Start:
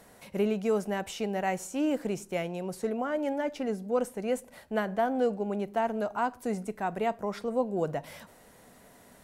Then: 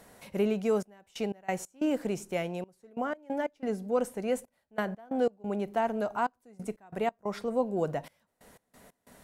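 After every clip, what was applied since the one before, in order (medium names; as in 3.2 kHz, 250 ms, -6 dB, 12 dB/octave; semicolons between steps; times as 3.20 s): trance gate "xxxxx..x.x." 91 bpm -24 dB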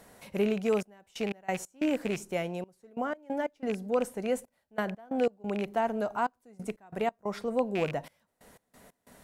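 rattle on loud lows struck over -35 dBFS, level -26 dBFS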